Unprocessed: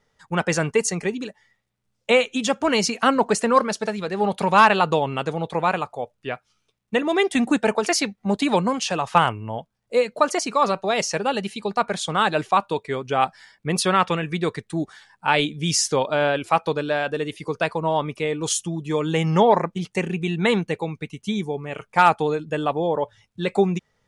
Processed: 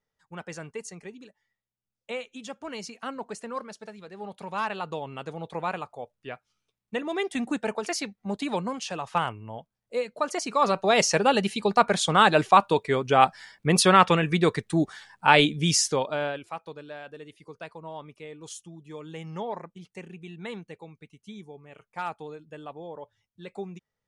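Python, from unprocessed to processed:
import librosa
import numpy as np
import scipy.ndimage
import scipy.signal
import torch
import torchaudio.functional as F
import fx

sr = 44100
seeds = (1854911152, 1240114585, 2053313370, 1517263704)

y = fx.gain(x, sr, db=fx.line((4.43, -17.0), (5.56, -9.0), (10.2, -9.0), (10.97, 2.0), (15.52, 2.0), (16.27, -9.0), (16.55, -17.5)))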